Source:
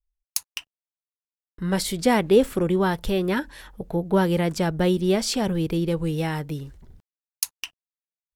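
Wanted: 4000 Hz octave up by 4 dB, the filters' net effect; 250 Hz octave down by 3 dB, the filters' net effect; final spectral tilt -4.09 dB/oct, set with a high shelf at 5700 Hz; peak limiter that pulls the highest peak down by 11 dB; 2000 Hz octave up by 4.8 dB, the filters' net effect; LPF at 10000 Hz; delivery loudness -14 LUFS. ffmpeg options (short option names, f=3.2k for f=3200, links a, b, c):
-af "lowpass=10k,equalizer=f=250:t=o:g=-5,equalizer=f=2k:t=o:g=5.5,equalizer=f=4k:t=o:g=7,highshelf=f=5.7k:g=-9,volume=14dB,alimiter=limit=-4dB:level=0:latency=1"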